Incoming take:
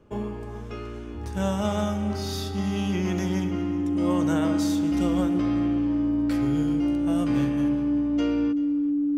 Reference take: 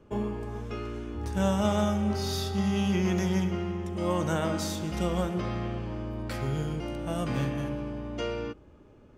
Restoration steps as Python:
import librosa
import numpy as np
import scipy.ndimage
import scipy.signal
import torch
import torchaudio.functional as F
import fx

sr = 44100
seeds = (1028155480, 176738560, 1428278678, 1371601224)

y = fx.notch(x, sr, hz=290.0, q=30.0)
y = fx.fix_echo_inverse(y, sr, delay_ms=381, level_db=-20.0)